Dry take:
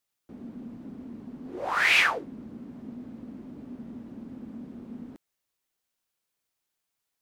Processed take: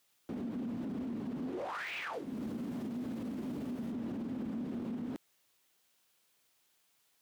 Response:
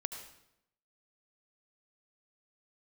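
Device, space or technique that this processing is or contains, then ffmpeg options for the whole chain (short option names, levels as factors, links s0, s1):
broadcast voice chain: -filter_complex "[0:a]highpass=f=110:p=1,deesser=0.75,acompressor=threshold=0.00794:ratio=4,equalizer=f=3200:t=o:w=0.77:g=2.5,alimiter=level_in=7.94:limit=0.0631:level=0:latency=1:release=22,volume=0.126,asettb=1/sr,asplit=3[s0][s1][s2];[s0]atrim=end=2.134[s3];[s1]atrim=start=2.13:end=3.92,asetpts=PTS-STARTPTS,afade=t=in:d=0.004:c=qsin,afade=t=out:st=1.786:d=0.004:c=qsin,aemphasis=mode=production:type=cd[s4];[s2]atrim=start=3.916[s5];[s3][s4]acrossfade=d=0.004:c1=hsin:c2=qsin[s6];[s6][s5]acrossfade=d=0.004:c1=qsin:c2=hsin,volume=2.99"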